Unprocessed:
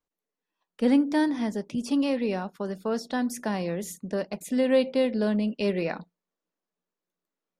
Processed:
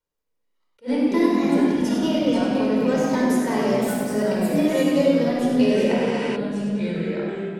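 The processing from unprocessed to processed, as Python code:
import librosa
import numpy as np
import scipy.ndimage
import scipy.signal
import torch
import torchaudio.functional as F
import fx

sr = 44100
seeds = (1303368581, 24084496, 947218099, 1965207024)

p1 = fx.pitch_ramps(x, sr, semitones=3.5, every_ms=788)
p2 = fx.rider(p1, sr, range_db=10, speed_s=0.5)
p3 = p1 + (p2 * librosa.db_to_amplitude(-3.0))
p4 = fx.echo_pitch(p3, sr, ms=137, semitones=-3, count=2, db_per_echo=-6.0)
p5 = p4 + fx.echo_feedback(p4, sr, ms=99, feedback_pct=54, wet_db=-8.0, dry=0)
p6 = fx.room_shoebox(p5, sr, seeds[0], volume_m3=3700.0, walls='mixed', distance_m=4.7)
p7 = fx.spec_repair(p6, sr, seeds[1], start_s=6.0, length_s=0.33, low_hz=880.0, high_hz=11000.0, source='before')
p8 = fx.attack_slew(p7, sr, db_per_s=360.0)
y = p8 * librosa.db_to_amplitude(-6.0)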